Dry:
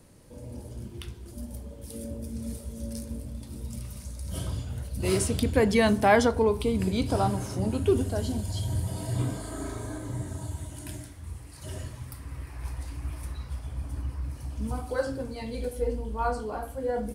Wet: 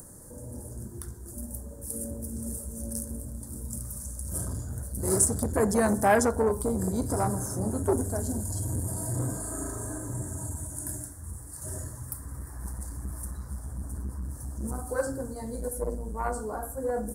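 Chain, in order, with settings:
drawn EQ curve 1,700 Hz 0 dB, 2,600 Hz −29 dB, 7,600 Hz +11 dB
upward compression, threshold −41 dBFS
saturating transformer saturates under 1,100 Hz

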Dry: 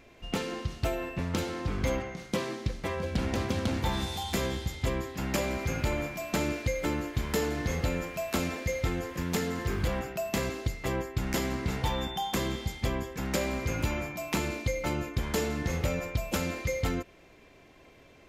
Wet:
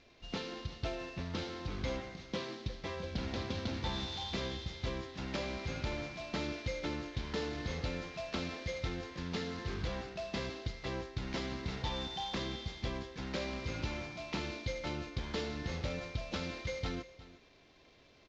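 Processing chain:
variable-slope delta modulation 32 kbit/s
parametric band 3,900 Hz +6.5 dB 0.64 octaves
single-tap delay 357 ms −17.5 dB
level −8 dB

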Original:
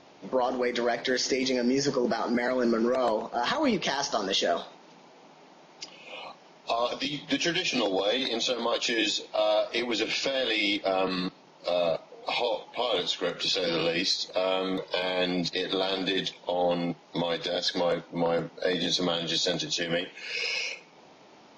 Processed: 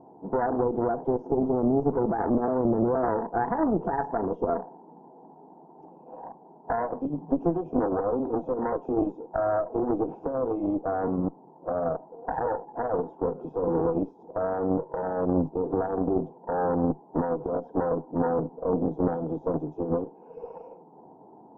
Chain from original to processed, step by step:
elliptic low-pass filter 940 Hz, stop band 50 dB
brickwall limiter −21 dBFS, peak gain reduction 7 dB
notch comb filter 580 Hz
harmonic generator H 2 −7 dB, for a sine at −19.5 dBFS
level +5 dB

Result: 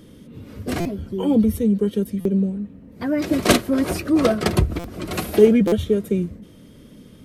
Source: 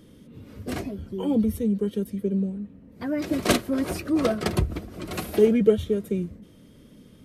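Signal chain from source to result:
buffer that repeats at 0:00.80/0:02.20/0:04.79/0:05.67, samples 256, times 8
level +5.5 dB

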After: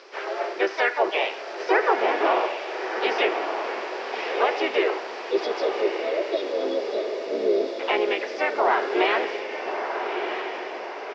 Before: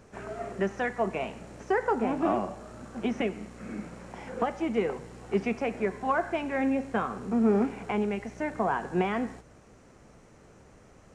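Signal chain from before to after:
pitch-shifted copies added −3 semitones −3 dB, +4 semitones −7 dB
Chebyshev band-pass filter 370–5,100 Hz, order 4
high-shelf EQ 2,000 Hz +12 dB
in parallel at −0.5 dB: brickwall limiter −21 dBFS, peak gain reduction 11 dB
on the sum: time-frequency box erased 0:05.31–0:07.80, 680–3,300 Hz
on a send: feedback delay with all-pass diffusion 1,266 ms, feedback 50%, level −6 dB

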